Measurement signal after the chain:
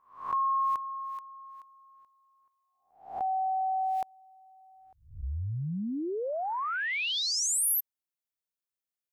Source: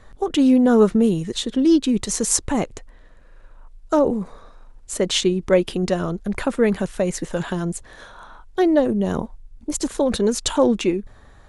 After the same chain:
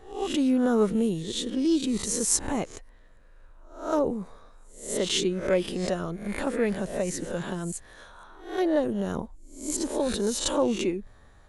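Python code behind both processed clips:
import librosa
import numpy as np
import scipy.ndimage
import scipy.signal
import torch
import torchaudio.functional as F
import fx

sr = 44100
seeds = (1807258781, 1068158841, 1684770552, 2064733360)

y = fx.spec_swells(x, sr, rise_s=0.47)
y = fx.high_shelf(y, sr, hz=10000.0, db=6.5)
y = y * librosa.db_to_amplitude(-8.5)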